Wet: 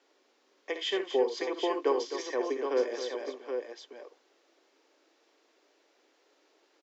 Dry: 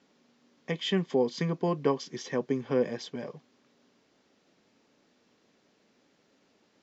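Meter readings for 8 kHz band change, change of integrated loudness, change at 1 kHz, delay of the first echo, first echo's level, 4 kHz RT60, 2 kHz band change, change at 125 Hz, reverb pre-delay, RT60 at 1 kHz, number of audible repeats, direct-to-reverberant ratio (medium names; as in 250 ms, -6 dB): no reading, -1.5 dB, +1.5 dB, 59 ms, -9.5 dB, no reverb, +1.0 dB, under -35 dB, no reverb, no reverb, 3, no reverb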